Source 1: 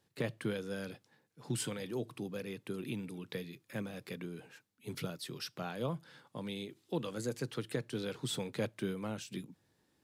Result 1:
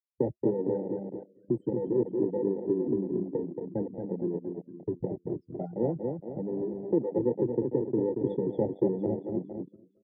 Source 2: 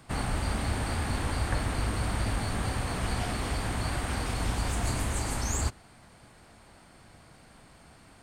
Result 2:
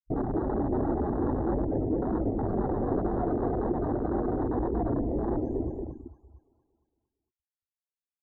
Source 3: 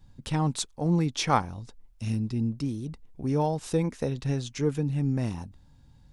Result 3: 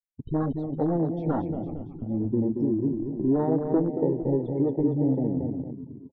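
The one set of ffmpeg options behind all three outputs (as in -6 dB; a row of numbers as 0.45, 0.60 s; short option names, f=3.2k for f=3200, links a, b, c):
-filter_complex "[0:a]asplit=2[a][b];[b]aecho=0:1:354:0.119[c];[a][c]amix=inputs=2:normalize=0,aeval=exprs='0.355*sin(PI/2*3.98*val(0)/0.355)':c=same,equalizer=f=340:t=o:w=0.82:g=9,afftfilt=real='re*gte(hypot(re,im),0.282)':imag='im*gte(hypot(re,im),0.282)':win_size=1024:overlap=0.75,agate=range=-48dB:threshold=-29dB:ratio=16:detection=peak,acrossover=split=250|570[d][e][f];[d]acompressor=threshold=-28dB:ratio=4[g];[e]acompressor=threshold=-14dB:ratio=4[h];[f]acompressor=threshold=-34dB:ratio=4[i];[g][h][i]amix=inputs=3:normalize=0,asplit=2[j][k];[k]aecho=0:1:229|458|687|916|1145|1374|1603:0.562|0.292|0.152|0.0791|0.0411|0.0214|0.0111[l];[j][l]amix=inputs=2:normalize=0,flanger=delay=4.9:depth=3.1:regen=-60:speed=1.9:shape=sinusoidal,firequalizer=gain_entry='entry(110,0);entry(200,-2);entry(410,-1);entry(760,2);entry(4200,-9);entry(6800,-29)':delay=0.05:min_phase=1,afwtdn=0.0501,volume=-3dB"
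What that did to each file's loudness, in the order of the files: +9.5, +1.5, +2.0 LU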